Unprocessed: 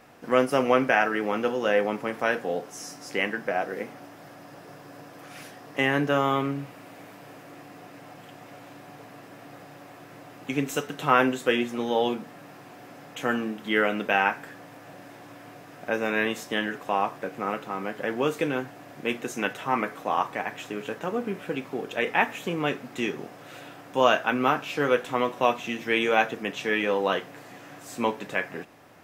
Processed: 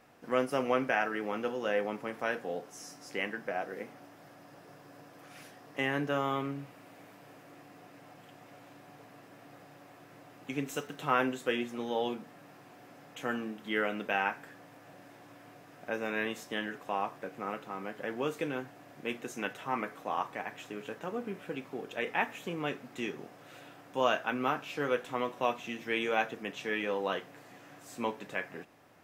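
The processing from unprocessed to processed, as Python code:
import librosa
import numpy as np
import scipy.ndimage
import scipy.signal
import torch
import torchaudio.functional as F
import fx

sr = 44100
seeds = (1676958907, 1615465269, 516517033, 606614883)

y = fx.dmg_crackle(x, sr, seeds[0], per_s=fx.line((10.65, 510.0), (11.16, 180.0)), level_db=-44.0, at=(10.65, 11.16), fade=0.02)
y = F.gain(torch.from_numpy(y), -8.0).numpy()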